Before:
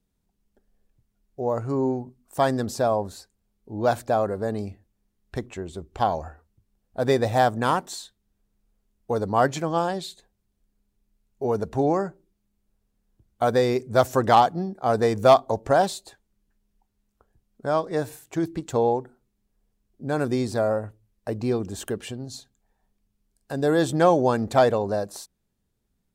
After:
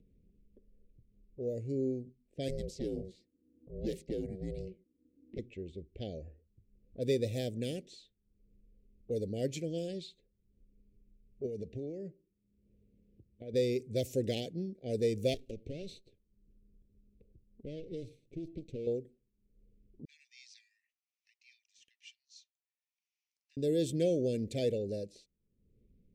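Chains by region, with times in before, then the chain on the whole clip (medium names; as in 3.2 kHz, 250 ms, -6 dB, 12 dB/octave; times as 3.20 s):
2.48–5.39 s: bass shelf 94 Hz +6.5 dB + ring modulator 280 Hz
11.46–13.54 s: high-pass 62 Hz + compression 8:1, threshold -26 dBFS
15.34–18.87 s: comb filter that takes the minimum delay 0.51 ms + peaking EQ 1.8 kHz -15 dB 0.61 oct + compression 16:1, threshold -26 dBFS
20.05–23.57 s: Chebyshev high-pass 1.8 kHz, order 6 + peaking EQ 5.9 kHz +15 dB 0.61 oct + de-esser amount 65%
whole clip: elliptic band-stop 510–2300 Hz, stop band 60 dB; upward compressor, threshold -41 dBFS; level-controlled noise filter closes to 1.1 kHz, open at -23.5 dBFS; trim -8.5 dB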